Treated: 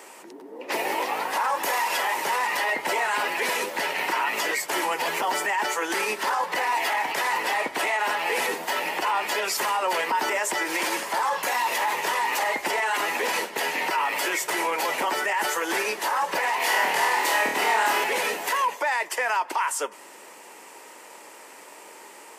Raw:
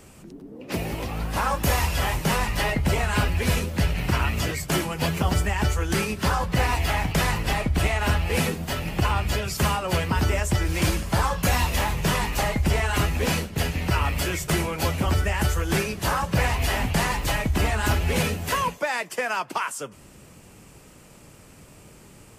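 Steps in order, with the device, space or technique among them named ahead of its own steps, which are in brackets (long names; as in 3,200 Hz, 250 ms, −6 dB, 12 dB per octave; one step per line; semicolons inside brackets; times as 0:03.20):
laptop speaker (high-pass filter 360 Hz 24 dB per octave; parametric band 920 Hz +11.5 dB 0.29 octaves; parametric band 1,900 Hz +7 dB 0.38 octaves; brickwall limiter −21.5 dBFS, peak gain reduction 12.5 dB)
0:16.57–0:18.04: flutter between parallel walls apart 4.5 metres, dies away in 0.56 s
level +5 dB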